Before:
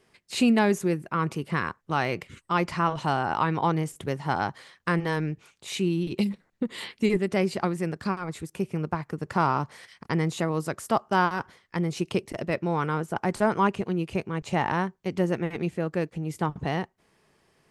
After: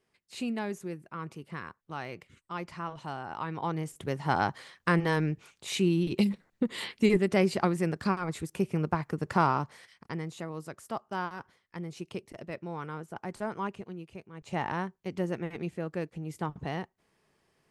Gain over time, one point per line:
3.29 s -12.5 dB
4.37 s 0 dB
9.33 s 0 dB
10.27 s -11.5 dB
13.72 s -11.5 dB
14.3 s -18 dB
14.56 s -6.5 dB

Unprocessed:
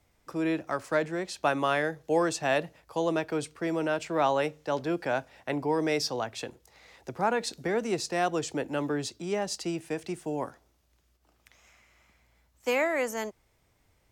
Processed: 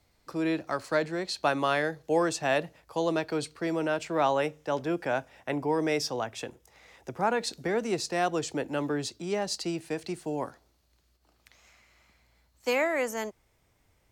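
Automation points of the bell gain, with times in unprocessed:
bell 4300 Hz 0.22 oct
+11.5 dB
from 2.02 s +1 dB
from 2.98 s +11 dB
from 3.73 s +1 dB
from 4.34 s -7 dB
from 7.27 s +2.5 dB
from 9.3 s +8.5 dB
from 12.73 s -1 dB

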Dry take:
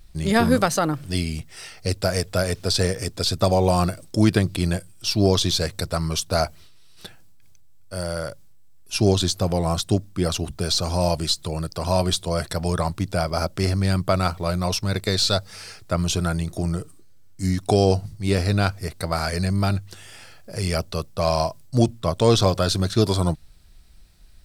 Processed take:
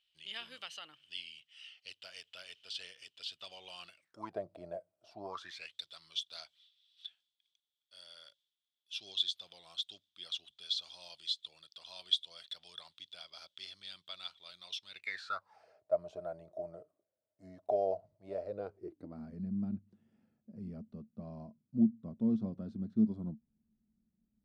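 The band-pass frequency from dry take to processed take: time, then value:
band-pass, Q 13
3.93 s 3000 Hz
4.38 s 630 Hz
5.1 s 630 Hz
5.75 s 3400 Hz
14.87 s 3400 Hz
15.68 s 620 Hz
18.39 s 620 Hz
19.26 s 220 Hz

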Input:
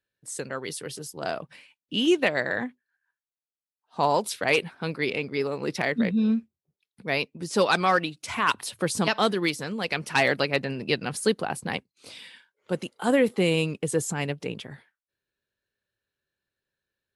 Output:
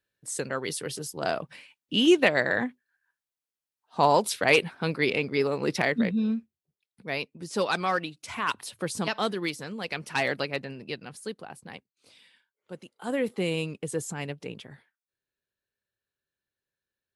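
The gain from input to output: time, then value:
5.77 s +2 dB
6.37 s -5 dB
10.41 s -5 dB
11.22 s -13 dB
12.85 s -13 dB
13.28 s -5.5 dB

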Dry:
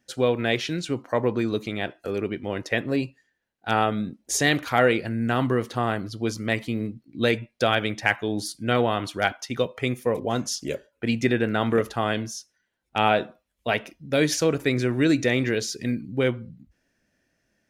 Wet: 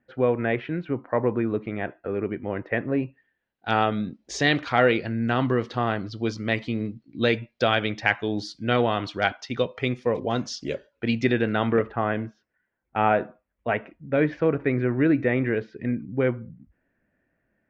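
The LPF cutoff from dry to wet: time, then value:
LPF 24 dB/oct
3.05 s 2100 Hz
3.73 s 5100 Hz
11.42 s 5100 Hz
11.91 s 2100 Hz

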